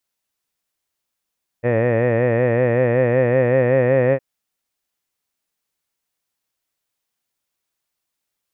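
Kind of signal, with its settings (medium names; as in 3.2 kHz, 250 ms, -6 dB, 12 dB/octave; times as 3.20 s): formant-synthesis vowel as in head, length 2.56 s, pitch 116 Hz, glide +2 st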